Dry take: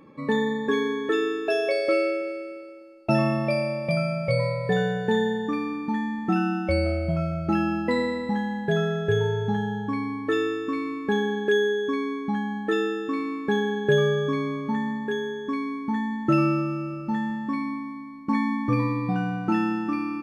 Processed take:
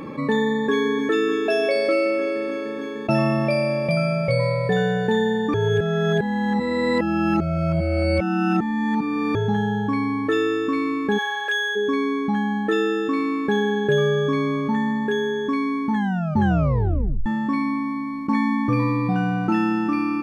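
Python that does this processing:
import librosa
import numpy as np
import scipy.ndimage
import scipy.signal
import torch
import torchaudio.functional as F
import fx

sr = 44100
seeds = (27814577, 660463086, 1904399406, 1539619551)

y = fx.echo_throw(x, sr, start_s=0.55, length_s=0.51, ms=300, feedback_pct=85, wet_db=-13.0)
y = fx.highpass(y, sr, hz=750.0, slope=24, at=(11.17, 11.75), fade=0.02)
y = fx.edit(y, sr, fx.reverse_span(start_s=5.54, length_s=3.81),
    fx.tape_stop(start_s=15.92, length_s=1.34), tone=tone)
y = fx.env_flatten(y, sr, amount_pct=50)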